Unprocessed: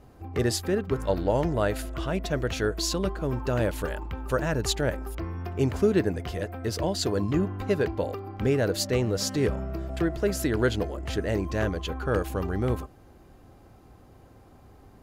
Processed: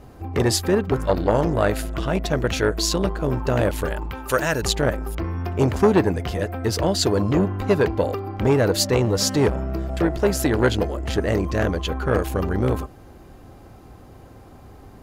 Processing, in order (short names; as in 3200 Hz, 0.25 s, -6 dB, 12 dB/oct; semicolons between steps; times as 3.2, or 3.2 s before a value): 4.11–4.62 tilt +2.5 dB/oct; core saturation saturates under 640 Hz; gain +8 dB